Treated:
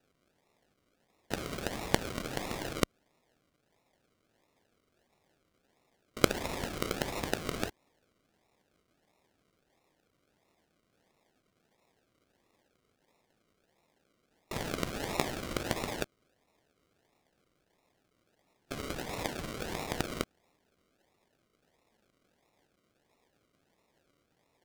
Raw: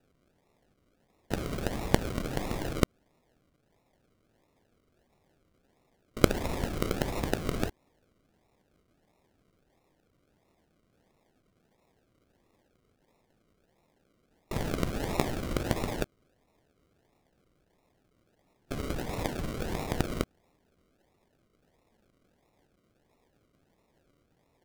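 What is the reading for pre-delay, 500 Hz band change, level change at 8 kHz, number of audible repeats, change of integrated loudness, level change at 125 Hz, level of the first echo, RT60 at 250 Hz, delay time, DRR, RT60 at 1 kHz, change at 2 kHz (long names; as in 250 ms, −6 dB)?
no reverb audible, −3.0 dB, +1.0 dB, no echo audible, −3.0 dB, −7.0 dB, no echo audible, no reverb audible, no echo audible, no reverb audible, no reverb audible, +0.5 dB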